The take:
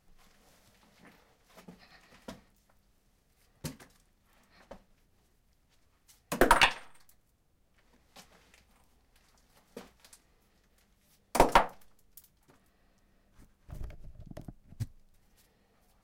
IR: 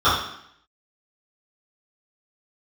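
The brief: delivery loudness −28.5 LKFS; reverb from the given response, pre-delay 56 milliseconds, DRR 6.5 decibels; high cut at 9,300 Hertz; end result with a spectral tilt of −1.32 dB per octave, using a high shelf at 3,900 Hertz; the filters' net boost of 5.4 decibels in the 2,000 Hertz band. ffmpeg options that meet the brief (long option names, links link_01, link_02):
-filter_complex "[0:a]lowpass=9300,equalizer=frequency=2000:width_type=o:gain=8,highshelf=frequency=3900:gain=-4,asplit=2[link_01][link_02];[1:a]atrim=start_sample=2205,adelay=56[link_03];[link_02][link_03]afir=irnorm=-1:irlink=0,volume=-30dB[link_04];[link_01][link_04]amix=inputs=2:normalize=0,volume=-3.5dB"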